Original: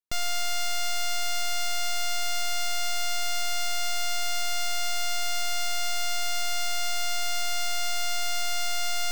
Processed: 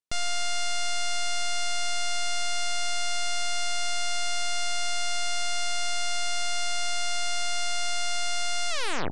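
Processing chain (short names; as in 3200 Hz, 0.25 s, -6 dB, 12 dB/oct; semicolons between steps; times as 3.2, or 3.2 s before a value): tape stop at the end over 0.42 s; downsampling 22050 Hz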